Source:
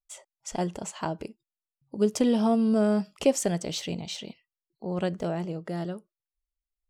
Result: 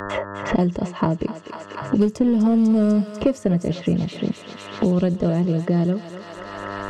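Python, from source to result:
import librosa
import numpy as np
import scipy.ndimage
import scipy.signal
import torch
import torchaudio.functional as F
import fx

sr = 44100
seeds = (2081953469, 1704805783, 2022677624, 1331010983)

p1 = fx.env_lowpass(x, sr, base_hz=2600.0, full_db=-21.5)
p2 = fx.riaa(p1, sr, side='playback')
p3 = fx.dmg_buzz(p2, sr, base_hz=100.0, harmonics=18, level_db=-62.0, tilt_db=-1, odd_only=False)
p4 = fx.bass_treble(p3, sr, bass_db=-1, treble_db=4)
p5 = fx.notch_comb(p4, sr, f0_hz=780.0)
p6 = np.clip(p5, -10.0 ** (-18.5 / 20.0), 10.0 ** (-18.5 / 20.0))
p7 = p5 + (p6 * 10.0 ** (-5.5 / 20.0))
p8 = fx.echo_thinned(p7, sr, ms=247, feedback_pct=76, hz=1000.0, wet_db=-10.5)
y = fx.band_squash(p8, sr, depth_pct=100)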